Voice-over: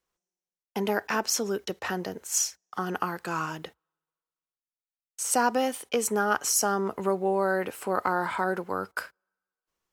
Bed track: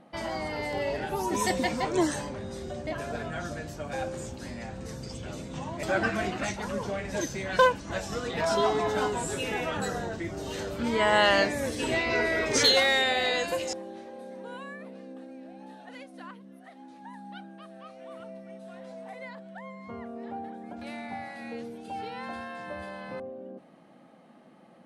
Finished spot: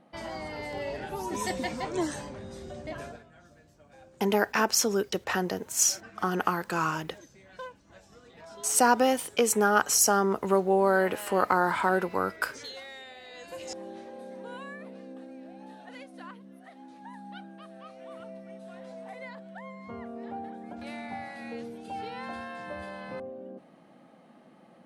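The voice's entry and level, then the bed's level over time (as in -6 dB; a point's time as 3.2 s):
3.45 s, +2.5 dB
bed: 3.06 s -4.5 dB
3.26 s -21 dB
13.28 s -21 dB
13.84 s -0.5 dB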